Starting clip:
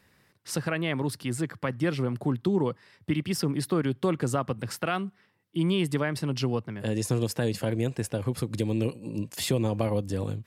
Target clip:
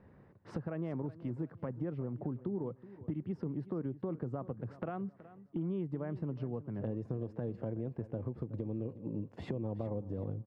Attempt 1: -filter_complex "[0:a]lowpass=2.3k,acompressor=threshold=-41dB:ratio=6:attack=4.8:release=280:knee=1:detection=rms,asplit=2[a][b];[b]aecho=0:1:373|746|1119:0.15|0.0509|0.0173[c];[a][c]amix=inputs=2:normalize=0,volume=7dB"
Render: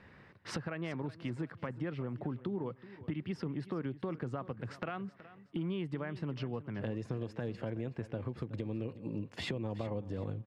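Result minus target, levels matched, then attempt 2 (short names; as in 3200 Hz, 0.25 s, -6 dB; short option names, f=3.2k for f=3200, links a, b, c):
2000 Hz band +11.5 dB
-filter_complex "[0:a]lowpass=760,acompressor=threshold=-41dB:ratio=6:attack=4.8:release=280:knee=1:detection=rms,asplit=2[a][b];[b]aecho=0:1:373|746|1119:0.15|0.0509|0.0173[c];[a][c]amix=inputs=2:normalize=0,volume=7dB"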